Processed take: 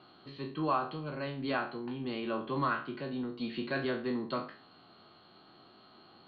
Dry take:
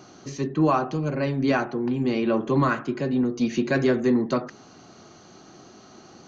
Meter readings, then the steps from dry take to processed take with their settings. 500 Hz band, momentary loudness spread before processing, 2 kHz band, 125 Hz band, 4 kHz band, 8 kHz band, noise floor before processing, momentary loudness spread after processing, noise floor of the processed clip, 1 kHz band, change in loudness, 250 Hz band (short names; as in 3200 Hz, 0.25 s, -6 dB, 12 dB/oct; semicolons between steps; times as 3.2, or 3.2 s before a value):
-12.0 dB, 7 LU, -7.5 dB, -14.0 dB, -4.5 dB, n/a, -50 dBFS, 7 LU, -59 dBFS, -7.0 dB, -11.5 dB, -13.5 dB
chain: spectral trails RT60 0.39 s; rippled Chebyshev low-pass 4400 Hz, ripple 6 dB; high shelf 3400 Hz +10 dB; gain -8.5 dB